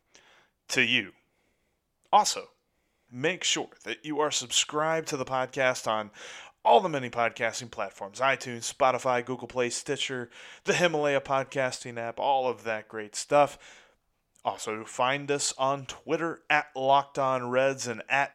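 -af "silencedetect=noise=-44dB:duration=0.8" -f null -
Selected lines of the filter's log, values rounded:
silence_start: 1.10
silence_end: 2.13 | silence_duration: 1.03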